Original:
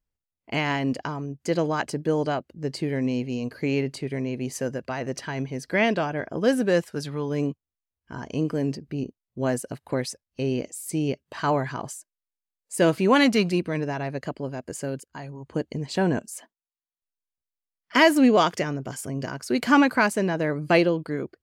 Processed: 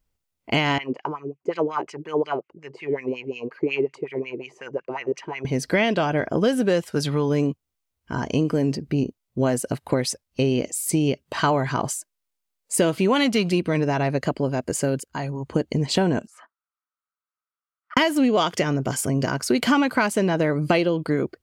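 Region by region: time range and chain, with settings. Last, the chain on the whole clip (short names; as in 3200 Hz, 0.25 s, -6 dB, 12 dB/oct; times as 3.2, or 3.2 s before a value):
0.78–5.45 ripple EQ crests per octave 0.73, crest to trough 7 dB + wah 5.5 Hz 330–2400 Hz, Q 3
16.27–17.97 band-pass 1300 Hz, Q 7.7 + negative-ratio compressor -51 dBFS, ratio -0.5
whole clip: notch 1700 Hz, Q 16; dynamic EQ 3200 Hz, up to +6 dB, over -50 dBFS, Q 5.6; compressor 6:1, threshold -26 dBFS; gain +9 dB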